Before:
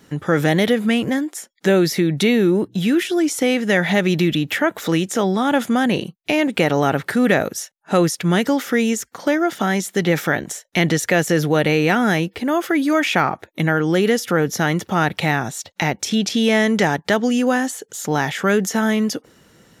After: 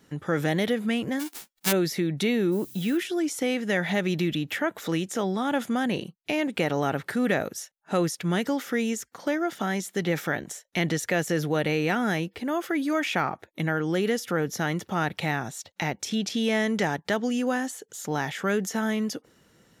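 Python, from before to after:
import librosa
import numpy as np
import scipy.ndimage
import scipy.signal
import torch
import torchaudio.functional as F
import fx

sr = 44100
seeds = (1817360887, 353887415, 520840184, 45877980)

y = fx.envelope_flatten(x, sr, power=0.1, at=(1.19, 1.71), fade=0.02)
y = fx.dmg_noise_colour(y, sr, seeds[0], colour='violet', level_db=-38.0, at=(2.51, 2.96), fade=0.02)
y = y * 10.0 ** (-8.5 / 20.0)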